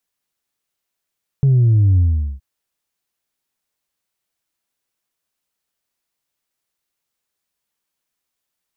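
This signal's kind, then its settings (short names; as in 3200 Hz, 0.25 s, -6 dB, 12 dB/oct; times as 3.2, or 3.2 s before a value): sub drop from 140 Hz, over 0.97 s, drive 1 dB, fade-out 0.42 s, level -10 dB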